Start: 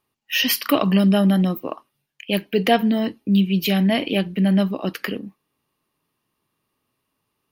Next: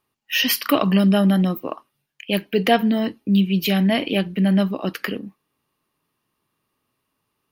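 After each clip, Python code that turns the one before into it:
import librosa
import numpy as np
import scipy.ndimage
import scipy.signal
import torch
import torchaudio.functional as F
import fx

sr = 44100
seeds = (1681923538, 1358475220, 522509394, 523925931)

y = fx.peak_eq(x, sr, hz=1400.0, db=2.0, octaves=0.77)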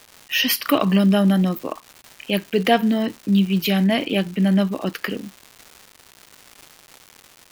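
y = fx.dmg_crackle(x, sr, seeds[0], per_s=370.0, level_db=-31.0)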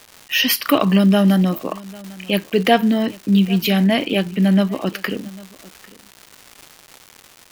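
y = x + 10.0 ** (-22.0 / 20.0) * np.pad(x, (int(798 * sr / 1000.0), 0))[:len(x)]
y = y * librosa.db_to_amplitude(2.5)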